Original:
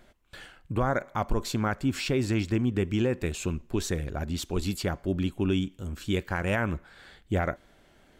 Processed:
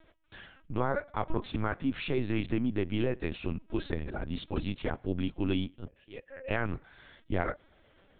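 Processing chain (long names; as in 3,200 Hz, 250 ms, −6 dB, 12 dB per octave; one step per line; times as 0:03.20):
0:05.86–0:06.50: formant filter e
linear-prediction vocoder at 8 kHz pitch kept
level −3.5 dB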